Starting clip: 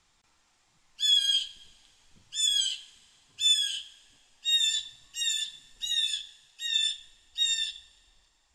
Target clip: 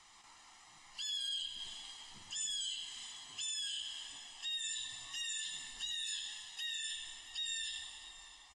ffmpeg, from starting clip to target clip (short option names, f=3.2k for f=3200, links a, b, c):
-filter_complex "[0:a]bass=f=250:g=-15,treble=f=4k:g=-3,aecho=1:1:1:0.6,acrossover=split=410[a][b];[b]acompressor=threshold=-39dB:ratio=6[c];[a][c]amix=inputs=2:normalize=0,alimiter=level_in=17dB:limit=-24dB:level=0:latency=1:release=34,volume=-17dB,crystalizer=i=0.5:c=0,asplit=2[d][e];[e]aecho=0:1:78|100|126|197|281|658:0.141|0.299|0.106|0.141|0.168|0.15[f];[d][f]amix=inputs=2:normalize=0,volume=6.5dB" -ar 24000 -c:a aac -b:a 32k